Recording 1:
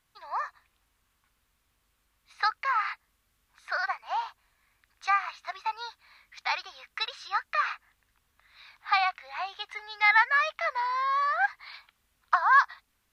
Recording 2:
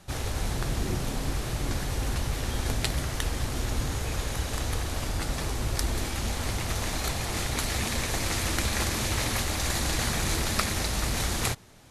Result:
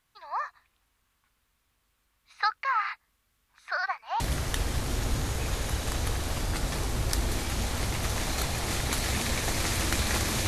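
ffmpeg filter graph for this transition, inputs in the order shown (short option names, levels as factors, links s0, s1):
-filter_complex "[0:a]apad=whole_dur=10.47,atrim=end=10.47,atrim=end=4.202[s0];[1:a]atrim=start=2.858:end=9.13[s1];[s0][s1]acrossfade=d=0.004:c1=hsin:c2=hsin"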